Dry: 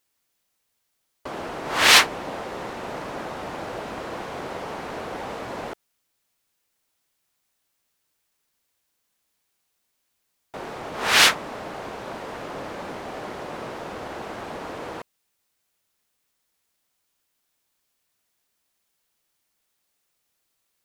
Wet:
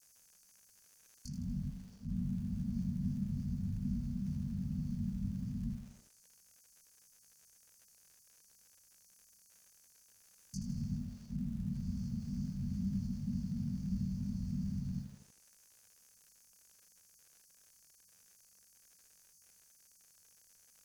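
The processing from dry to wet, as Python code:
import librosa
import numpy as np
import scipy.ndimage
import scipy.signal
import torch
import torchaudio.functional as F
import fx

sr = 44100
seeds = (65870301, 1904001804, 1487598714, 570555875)

y = fx.env_lowpass_down(x, sr, base_hz=690.0, full_db=-28.5)
y = fx.over_compress(y, sr, threshold_db=-35.0, ratio=-0.5)
y = fx.brickwall_bandstop(y, sr, low_hz=240.0, high_hz=4300.0)
y = fx.peak_eq(y, sr, hz=1400.0, db=-7.0, octaves=2.5)
y = fx.doubler(y, sr, ms=21.0, db=-2.5)
y = fx.wow_flutter(y, sr, seeds[0], rate_hz=2.1, depth_cents=24.0)
y = fx.dmg_crackle(y, sr, seeds[1], per_s=120.0, level_db=-61.0)
y = fx.graphic_eq_31(y, sr, hz=(125, 500, 1600, 2500, 6300, 10000), db=(-4, 5, 7, 4, 9, 4))
y = fx.echo_crushed(y, sr, ms=80, feedback_pct=55, bits=11, wet_db=-8.5)
y = y * 10.0 ** (6.0 / 20.0)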